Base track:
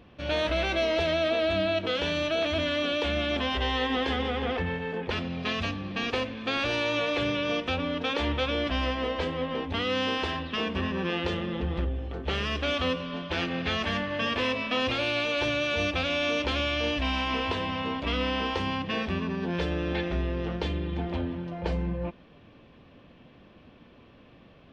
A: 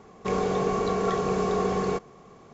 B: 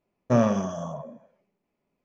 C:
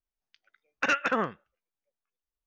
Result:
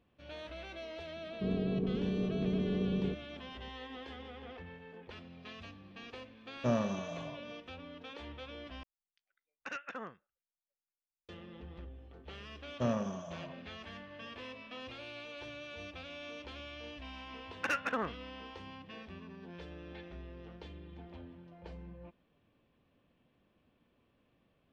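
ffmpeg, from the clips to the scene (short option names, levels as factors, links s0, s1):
-filter_complex "[2:a]asplit=2[s0][s1];[3:a]asplit=2[s2][s3];[0:a]volume=0.112[s4];[1:a]lowpass=f=250:t=q:w=1.8[s5];[s3]adynamicsmooth=sensitivity=4.5:basefreq=4400[s6];[s4]asplit=2[s7][s8];[s7]atrim=end=8.834[s9];[s2]atrim=end=2.46,asetpts=PTS-STARTPTS,volume=0.15[s10];[s8]atrim=start=11.286[s11];[s5]atrim=end=2.53,asetpts=PTS-STARTPTS,volume=0.501,afade=t=in:d=0.004:c=hsin,afade=t=out:st=2.526:d=0.004:c=hsin,adelay=1160[s12];[s0]atrim=end=2.04,asetpts=PTS-STARTPTS,volume=0.299,afade=t=in:d=0.004:c=hsin,afade=t=out:st=2.036:d=0.004:c=hsin,adelay=279594S[s13];[s1]atrim=end=2.04,asetpts=PTS-STARTPTS,volume=0.251,afade=t=in:d=0.004:c=hsin,afade=t=out:st=2.036:d=0.004:c=hsin,adelay=12500[s14];[s6]atrim=end=2.46,asetpts=PTS-STARTPTS,volume=0.422,afade=t=in:d=0.004:c=hsin,afade=t=out:st=2.456:d=0.004:c=hsin,adelay=16810[s15];[s9][s10]acrossfade=d=0.004:c1=hsin:c2=hsin[s16];[s16][s11]acrossfade=d=0.004:c1=hsin:c2=hsin[s17];[s17][s12][s13][s14][s15]amix=inputs=5:normalize=0"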